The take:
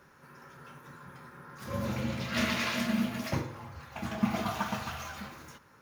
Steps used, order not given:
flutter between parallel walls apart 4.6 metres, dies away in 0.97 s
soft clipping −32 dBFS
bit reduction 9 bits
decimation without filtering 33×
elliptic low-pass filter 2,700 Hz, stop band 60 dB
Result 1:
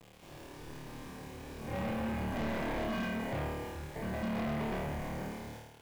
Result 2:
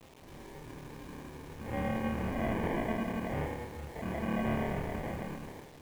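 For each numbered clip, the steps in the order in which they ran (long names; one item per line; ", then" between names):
decimation without filtering, then elliptic low-pass filter, then bit reduction, then flutter between parallel walls, then soft clipping
soft clipping, then flutter between parallel walls, then decimation without filtering, then elliptic low-pass filter, then bit reduction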